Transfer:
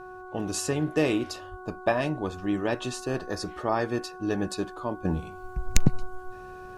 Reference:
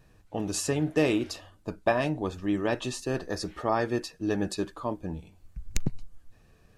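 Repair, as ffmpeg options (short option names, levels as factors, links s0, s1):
-filter_complex "[0:a]bandreject=f=368.8:t=h:w=4,bandreject=f=737.6:t=h:w=4,bandreject=f=1106.4:t=h:w=4,bandreject=f=1475.2:t=h:w=4,asplit=3[s0][s1][s2];[s0]afade=t=out:st=1.5:d=0.02[s3];[s1]highpass=f=140:w=0.5412,highpass=f=140:w=1.3066,afade=t=in:st=1.5:d=0.02,afade=t=out:st=1.62:d=0.02[s4];[s2]afade=t=in:st=1.62:d=0.02[s5];[s3][s4][s5]amix=inputs=3:normalize=0,asetnsamples=n=441:p=0,asendcmd='5.05 volume volume -8dB',volume=1"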